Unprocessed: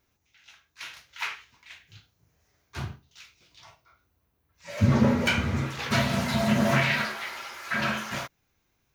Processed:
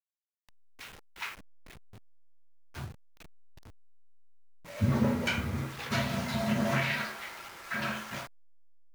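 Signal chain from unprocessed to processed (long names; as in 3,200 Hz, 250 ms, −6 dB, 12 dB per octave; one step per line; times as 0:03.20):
hold until the input has moved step −37.5 dBFS
level −6 dB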